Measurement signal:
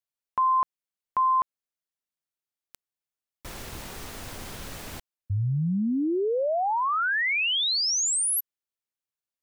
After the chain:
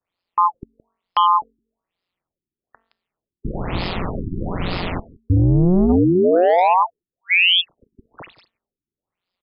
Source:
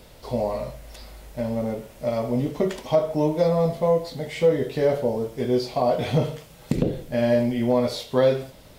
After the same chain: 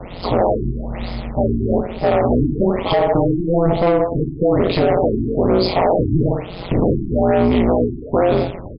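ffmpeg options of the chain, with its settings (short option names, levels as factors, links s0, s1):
-filter_complex "[0:a]adynamicequalizer=threshold=0.00501:dfrequency=3600:dqfactor=2.7:tfrequency=3600:tqfactor=2.7:attack=5:release=100:ratio=0.375:range=1.5:mode=cutabove:tftype=bell,acrossover=split=350|2900[s0][s1][s2];[s2]asoftclip=type=hard:threshold=0.0178[s3];[s0][s1][s3]amix=inputs=3:normalize=0,acompressor=threshold=0.0447:ratio=6:attack=39:release=57:knee=1:detection=peak,apsyclip=11.9,bandreject=f=225.5:t=h:w=4,bandreject=f=451:t=h:w=4,bandreject=f=676.5:t=h:w=4,bandreject=f=902:t=h:w=4,bandreject=f=1127.5:t=h:w=4,bandreject=f=1353:t=h:w=4,bandreject=f=1578.5:t=h:w=4,bandreject=f=1804:t=h:w=4,asoftclip=type=tanh:threshold=0.422,equalizer=f=1600:t=o:w=0.23:g=-10,tremolo=f=180:d=0.974,asplit=2[s4][s5];[s5]aecho=0:1:168:0.1[s6];[s4][s6]amix=inputs=2:normalize=0,afftfilt=real='re*lt(b*sr/1024,380*pow(5300/380,0.5+0.5*sin(2*PI*1.1*pts/sr)))':imag='im*lt(b*sr/1024,380*pow(5300/380,0.5+0.5*sin(2*PI*1.1*pts/sr)))':win_size=1024:overlap=0.75"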